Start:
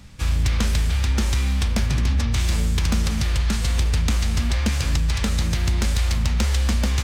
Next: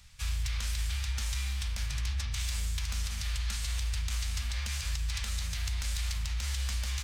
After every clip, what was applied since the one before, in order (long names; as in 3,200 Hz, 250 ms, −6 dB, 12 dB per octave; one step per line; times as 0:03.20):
guitar amp tone stack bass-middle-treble 10-0-10
brickwall limiter −20 dBFS, peak gain reduction 7.5 dB
level −4 dB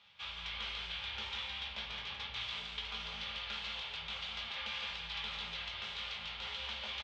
loudspeaker in its box 330–3,500 Hz, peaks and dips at 420 Hz +6 dB, 830 Hz +4 dB, 1,800 Hz −5 dB, 3,300 Hz +7 dB
single-tap delay 165 ms −4.5 dB
rectangular room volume 130 cubic metres, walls furnished, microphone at 1.3 metres
level −2.5 dB